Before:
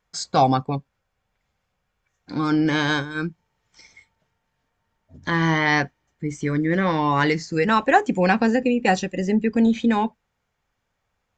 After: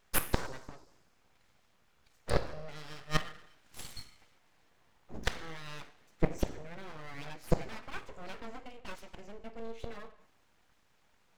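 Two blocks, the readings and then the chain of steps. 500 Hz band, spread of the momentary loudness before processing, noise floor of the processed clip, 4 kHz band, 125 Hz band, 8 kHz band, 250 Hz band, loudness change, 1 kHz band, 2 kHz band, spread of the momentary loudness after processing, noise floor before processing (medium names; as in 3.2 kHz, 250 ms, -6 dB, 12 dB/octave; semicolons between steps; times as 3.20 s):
-16.5 dB, 12 LU, -69 dBFS, -13.5 dB, -14.5 dB, -7.0 dB, -22.5 dB, -19.0 dB, -22.0 dB, -19.0 dB, 16 LU, -76 dBFS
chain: inverted gate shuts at -19 dBFS, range -30 dB; two-slope reverb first 0.61 s, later 1.7 s, DRR 7 dB; full-wave rectifier; trim +6.5 dB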